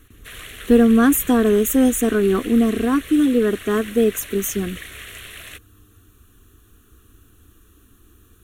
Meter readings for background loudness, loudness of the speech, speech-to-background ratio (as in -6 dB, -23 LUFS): -36.0 LUFS, -17.5 LUFS, 18.5 dB